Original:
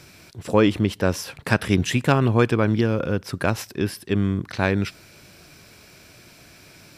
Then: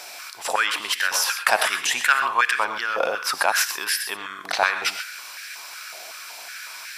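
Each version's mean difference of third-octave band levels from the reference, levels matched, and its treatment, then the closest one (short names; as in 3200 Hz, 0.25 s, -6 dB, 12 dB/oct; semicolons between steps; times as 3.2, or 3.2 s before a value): 14.5 dB: high shelf 2400 Hz +8 dB; in parallel at -1 dB: negative-ratio compressor -26 dBFS, ratio -0.5; on the sum: non-linear reverb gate 0.15 s rising, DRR 8 dB; stepped high-pass 5.4 Hz 730–1700 Hz; gain -4 dB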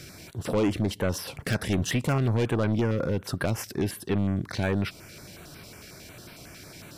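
5.5 dB: notch 2500 Hz, Q 21; in parallel at +1 dB: compressor, threshold -30 dBFS, peak gain reduction 16.5 dB; on the sum: soft clip -17 dBFS, distortion -9 dB; stepped notch 11 Hz 950–6800 Hz; gain -2.5 dB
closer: second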